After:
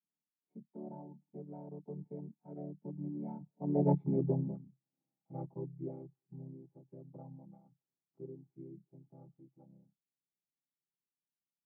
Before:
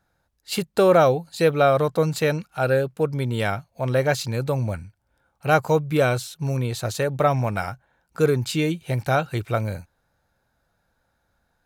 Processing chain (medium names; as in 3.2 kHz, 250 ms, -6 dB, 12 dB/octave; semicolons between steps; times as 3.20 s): vocoder on a held chord major triad, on C#3; Doppler pass-by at 4.02 s, 18 m/s, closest 3.2 m; cascade formant filter u; trim +8.5 dB